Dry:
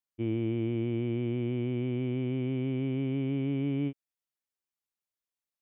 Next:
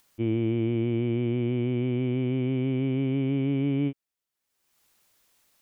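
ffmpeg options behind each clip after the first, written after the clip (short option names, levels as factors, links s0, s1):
-af "acompressor=mode=upward:threshold=0.00224:ratio=2.5,volume=1.68"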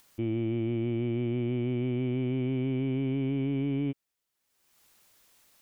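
-af "alimiter=level_in=1.33:limit=0.0631:level=0:latency=1:release=10,volume=0.75,volume=1.5"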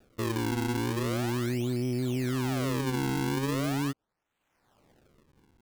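-af "acrusher=samples=41:mix=1:aa=0.000001:lfo=1:lforange=65.6:lforate=0.4"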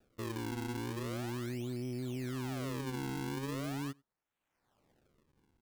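-filter_complex "[0:a]asplit=2[s0][s1];[s1]adelay=93.29,volume=0.0355,highshelf=f=4000:g=-2.1[s2];[s0][s2]amix=inputs=2:normalize=0,volume=0.355"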